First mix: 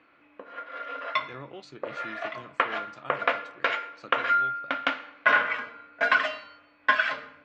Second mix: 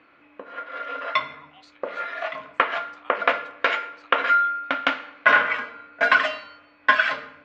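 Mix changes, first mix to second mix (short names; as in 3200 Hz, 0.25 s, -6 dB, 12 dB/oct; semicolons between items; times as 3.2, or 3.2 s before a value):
speech: add rippled Chebyshev high-pass 730 Hz, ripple 6 dB; background +4.5 dB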